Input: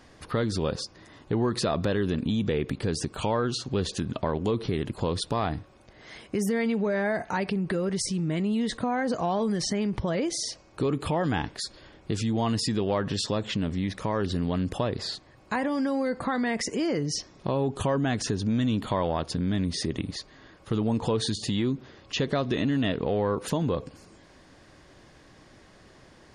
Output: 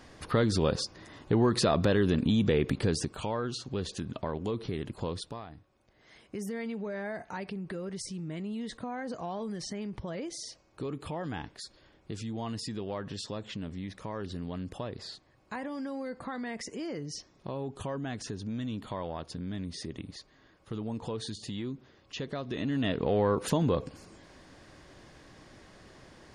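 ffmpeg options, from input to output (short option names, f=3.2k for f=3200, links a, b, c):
-af "volume=20dB,afade=t=out:st=2.82:d=0.4:silence=0.421697,afade=t=out:st=5.08:d=0.38:silence=0.237137,afade=t=in:st=5.46:d=0.92:silence=0.354813,afade=t=in:st=22.46:d=0.74:silence=0.316228"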